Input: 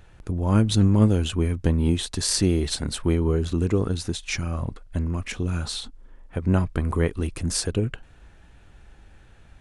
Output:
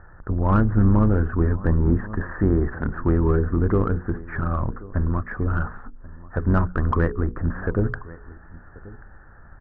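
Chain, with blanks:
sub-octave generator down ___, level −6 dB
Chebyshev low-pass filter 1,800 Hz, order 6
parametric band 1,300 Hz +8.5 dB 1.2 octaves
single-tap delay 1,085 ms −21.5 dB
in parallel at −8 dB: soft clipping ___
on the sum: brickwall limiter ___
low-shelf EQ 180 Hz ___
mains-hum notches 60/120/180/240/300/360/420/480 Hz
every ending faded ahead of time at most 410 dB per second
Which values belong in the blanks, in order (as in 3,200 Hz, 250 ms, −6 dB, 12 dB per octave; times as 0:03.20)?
2 octaves, −21 dBFS, −9.5 dBFS, +2 dB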